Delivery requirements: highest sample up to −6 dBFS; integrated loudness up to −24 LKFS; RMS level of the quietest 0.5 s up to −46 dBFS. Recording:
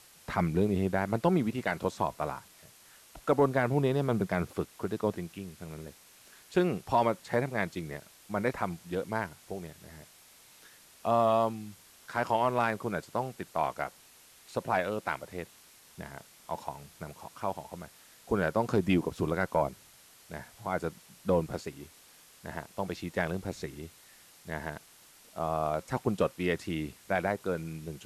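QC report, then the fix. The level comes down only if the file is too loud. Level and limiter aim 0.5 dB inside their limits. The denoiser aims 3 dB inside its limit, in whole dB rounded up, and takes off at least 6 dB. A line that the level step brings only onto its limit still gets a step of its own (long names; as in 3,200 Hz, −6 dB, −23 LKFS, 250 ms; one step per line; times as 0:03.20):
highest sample −14.5 dBFS: in spec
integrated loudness −32.0 LKFS: in spec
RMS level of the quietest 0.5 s −57 dBFS: in spec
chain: no processing needed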